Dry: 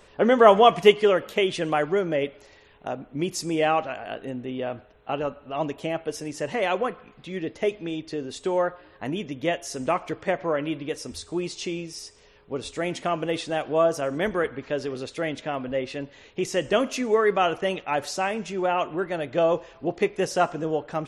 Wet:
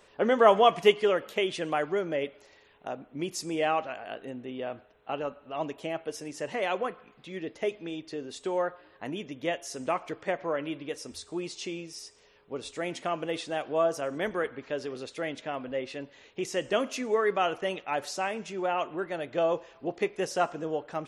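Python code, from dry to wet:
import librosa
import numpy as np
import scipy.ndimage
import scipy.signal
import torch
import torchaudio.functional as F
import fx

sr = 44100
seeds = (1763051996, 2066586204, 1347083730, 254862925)

y = fx.low_shelf(x, sr, hz=130.0, db=-10.5)
y = F.gain(torch.from_numpy(y), -4.5).numpy()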